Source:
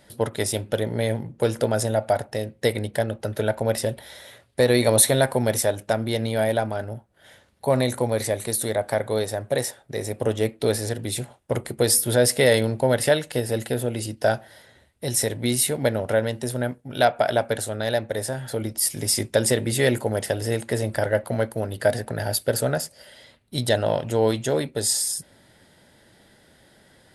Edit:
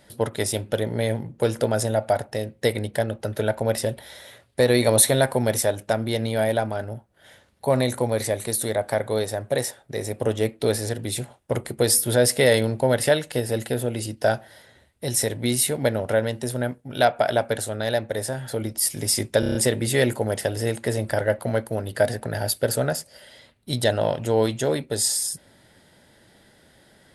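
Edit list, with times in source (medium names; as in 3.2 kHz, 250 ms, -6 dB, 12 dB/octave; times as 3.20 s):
19.40 s: stutter 0.03 s, 6 plays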